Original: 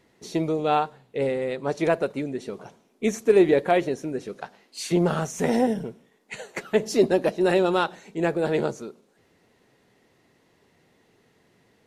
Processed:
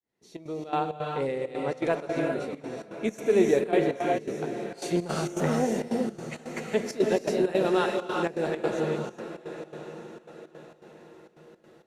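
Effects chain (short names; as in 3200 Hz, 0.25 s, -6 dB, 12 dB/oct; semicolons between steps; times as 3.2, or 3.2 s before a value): opening faded in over 0.88 s; diffused feedback echo 0.951 s, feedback 42%, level -12 dB; non-linear reverb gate 0.42 s rising, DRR 1 dB; step gate "xxxx.xx.xx.x" 165 bpm -12 dB; gain -5 dB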